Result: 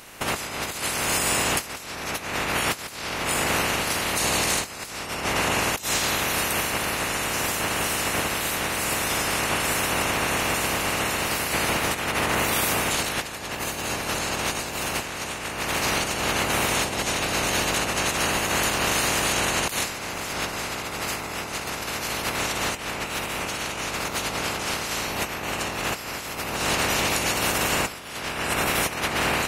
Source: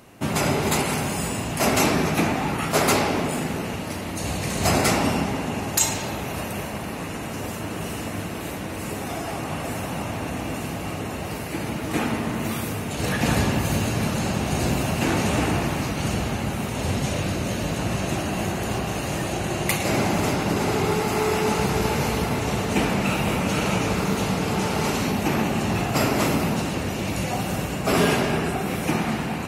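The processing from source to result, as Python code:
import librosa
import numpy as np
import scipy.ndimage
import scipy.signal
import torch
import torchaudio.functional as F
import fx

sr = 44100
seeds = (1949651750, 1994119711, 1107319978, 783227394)

y = fx.spec_clip(x, sr, under_db=19)
y = fx.over_compress(y, sr, threshold_db=-27.0, ratio=-0.5)
y = y * librosa.db_to_amplitude(1.5)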